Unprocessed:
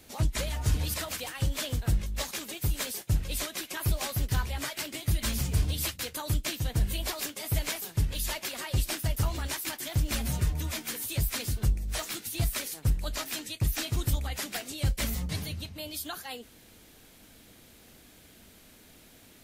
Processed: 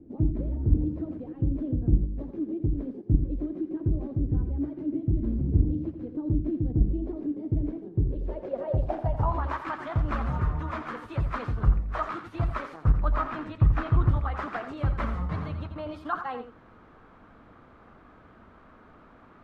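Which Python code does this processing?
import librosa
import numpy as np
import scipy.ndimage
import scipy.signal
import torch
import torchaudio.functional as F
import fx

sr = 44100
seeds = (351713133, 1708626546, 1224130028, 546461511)

p1 = fx.level_steps(x, sr, step_db=22)
p2 = x + (p1 * 10.0 ** (0.5 / 20.0))
p3 = fx.filter_sweep_lowpass(p2, sr, from_hz=310.0, to_hz=1200.0, start_s=7.87, end_s=9.58, q=4.2)
p4 = fx.bass_treble(p3, sr, bass_db=7, treble_db=-6, at=(12.98, 14.11))
y = p4 + 10.0 ** (-9.5 / 20.0) * np.pad(p4, (int(86 * sr / 1000.0), 0))[:len(p4)]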